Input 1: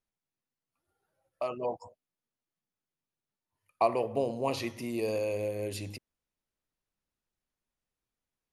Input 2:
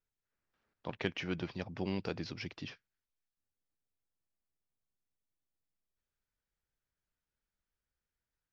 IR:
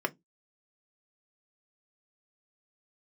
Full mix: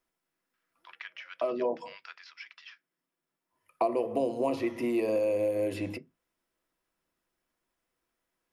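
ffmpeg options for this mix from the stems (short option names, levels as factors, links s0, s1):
-filter_complex "[0:a]volume=1.19,asplit=2[s0][s1];[s1]volume=0.668[s2];[1:a]highpass=f=1300:w=0.5412,highpass=f=1300:w=1.3066,alimiter=level_in=1.5:limit=0.0631:level=0:latency=1:release=374,volume=0.668,volume=0.631,asplit=3[s3][s4][s5];[s4]volume=0.531[s6];[s5]apad=whole_len=376003[s7];[s0][s7]sidechaincompress=threshold=0.001:ratio=8:attack=16:release=1310[s8];[2:a]atrim=start_sample=2205[s9];[s2][s6]amix=inputs=2:normalize=0[s10];[s10][s9]afir=irnorm=-1:irlink=0[s11];[s8][s3][s11]amix=inputs=3:normalize=0,acrossover=split=580|3000[s12][s13][s14];[s12]acompressor=threshold=0.0398:ratio=4[s15];[s13]acompressor=threshold=0.0141:ratio=4[s16];[s14]acompressor=threshold=0.002:ratio=4[s17];[s15][s16][s17]amix=inputs=3:normalize=0"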